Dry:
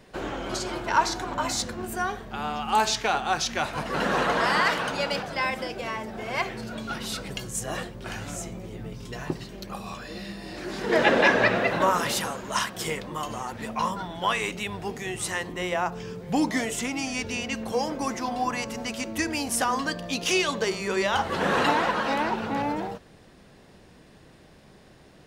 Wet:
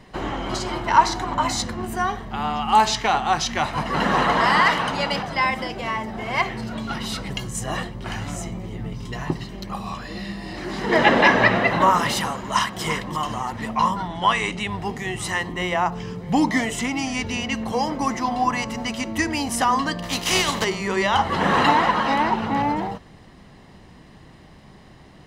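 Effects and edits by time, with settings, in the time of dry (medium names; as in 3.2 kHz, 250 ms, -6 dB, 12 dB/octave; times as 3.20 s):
12.38–12.82 s: echo throw 340 ms, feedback 35%, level -10 dB
14.09–14.70 s: careless resampling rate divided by 2×, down none, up filtered
20.02–20.63 s: spectral contrast reduction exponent 0.55
whole clip: treble shelf 6.2 kHz -8.5 dB; comb 1 ms, depth 40%; trim +5 dB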